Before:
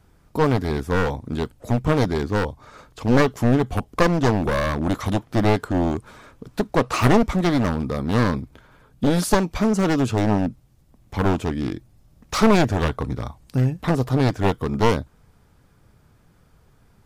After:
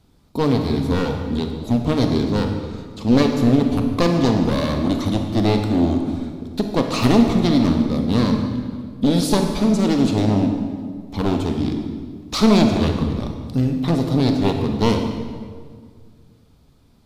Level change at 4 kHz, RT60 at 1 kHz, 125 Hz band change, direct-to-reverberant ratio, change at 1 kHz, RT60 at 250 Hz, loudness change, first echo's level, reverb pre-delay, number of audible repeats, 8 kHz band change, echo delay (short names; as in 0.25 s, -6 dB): +5.0 dB, 1.8 s, +1.5 dB, 4.0 dB, -1.5 dB, 2.3 s, +2.5 dB, none, 28 ms, none, +0.5 dB, none